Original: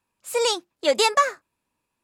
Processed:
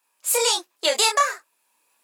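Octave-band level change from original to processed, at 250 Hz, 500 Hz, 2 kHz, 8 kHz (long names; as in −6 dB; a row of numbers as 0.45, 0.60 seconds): −6.5, −3.0, +1.0, +8.0 decibels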